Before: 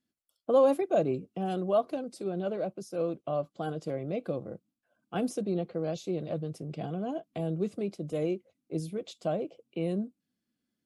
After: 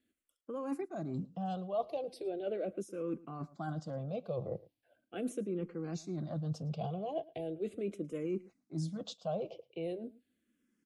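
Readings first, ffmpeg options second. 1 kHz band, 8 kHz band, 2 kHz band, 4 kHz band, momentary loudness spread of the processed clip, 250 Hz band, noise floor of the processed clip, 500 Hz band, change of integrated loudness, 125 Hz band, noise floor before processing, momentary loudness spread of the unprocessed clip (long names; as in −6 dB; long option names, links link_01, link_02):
−7.0 dB, −4.5 dB, −7.0 dB, −4.5 dB, 5 LU, −6.0 dB, −84 dBFS, −8.5 dB, −7.5 dB, −3.0 dB, −85 dBFS, 10 LU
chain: -filter_complex "[0:a]highshelf=frequency=9800:gain=-8,areverse,acompressor=threshold=-39dB:ratio=6,areverse,asplit=2[link_01][link_02];[link_02]adelay=110.8,volume=-21dB,highshelf=frequency=4000:gain=-2.49[link_03];[link_01][link_03]amix=inputs=2:normalize=0,asplit=2[link_04][link_05];[link_05]afreqshift=-0.39[link_06];[link_04][link_06]amix=inputs=2:normalize=1,volume=7dB"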